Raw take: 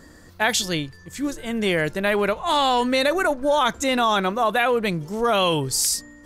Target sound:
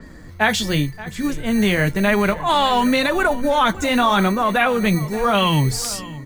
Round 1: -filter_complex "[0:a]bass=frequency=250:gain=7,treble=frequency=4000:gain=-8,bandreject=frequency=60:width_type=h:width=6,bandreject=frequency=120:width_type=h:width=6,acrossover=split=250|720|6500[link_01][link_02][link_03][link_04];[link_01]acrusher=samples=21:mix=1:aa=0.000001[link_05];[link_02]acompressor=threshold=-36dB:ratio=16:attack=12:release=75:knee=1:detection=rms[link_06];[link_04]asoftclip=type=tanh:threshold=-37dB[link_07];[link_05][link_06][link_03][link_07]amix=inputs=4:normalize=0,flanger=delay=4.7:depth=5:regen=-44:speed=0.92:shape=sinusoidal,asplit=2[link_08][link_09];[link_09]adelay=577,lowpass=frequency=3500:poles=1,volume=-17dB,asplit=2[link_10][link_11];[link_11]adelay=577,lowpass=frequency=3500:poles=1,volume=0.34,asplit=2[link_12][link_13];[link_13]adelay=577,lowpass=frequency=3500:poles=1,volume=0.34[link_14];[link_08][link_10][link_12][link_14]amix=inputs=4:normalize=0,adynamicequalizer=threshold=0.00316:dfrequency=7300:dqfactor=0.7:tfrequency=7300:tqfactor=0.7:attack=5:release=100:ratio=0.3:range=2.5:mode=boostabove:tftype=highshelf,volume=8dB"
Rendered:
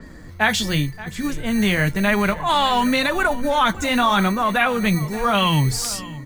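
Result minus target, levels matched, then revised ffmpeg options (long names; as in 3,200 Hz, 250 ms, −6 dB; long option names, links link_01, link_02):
downward compressor: peak gain reduction +7.5 dB
-filter_complex "[0:a]bass=frequency=250:gain=7,treble=frequency=4000:gain=-8,bandreject=frequency=60:width_type=h:width=6,bandreject=frequency=120:width_type=h:width=6,acrossover=split=250|720|6500[link_01][link_02][link_03][link_04];[link_01]acrusher=samples=21:mix=1:aa=0.000001[link_05];[link_02]acompressor=threshold=-28dB:ratio=16:attack=12:release=75:knee=1:detection=rms[link_06];[link_04]asoftclip=type=tanh:threshold=-37dB[link_07];[link_05][link_06][link_03][link_07]amix=inputs=4:normalize=0,flanger=delay=4.7:depth=5:regen=-44:speed=0.92:shape=sinusoidal,asplit=2[link_08][link_09];[link_09]adelay=577,lowpass=frequency=3500:poles=1,volume=-17dB,asplit=2[link_10][link_11];[link_11]adelay=577,lowpass=frequency=3500:poles=1,volume=0.34,asplit=2[link_12][link_13];[link_13]adelay=577,lowpass=frequency=3500:poles=1,volume=0.34[link_14];[link_08][link_10][link_12][link_14]amix=inputs=4:normalize=0,adynamicequalizer=threshold=0.00316:dfrequency=7300:dqfactor=0.7:tfrequency=7300:tqfactor=0.7:attack=5:release=100:ratio=0.3:range=2.5:mode=boostabove:tftype=highshelf,volume=8dB"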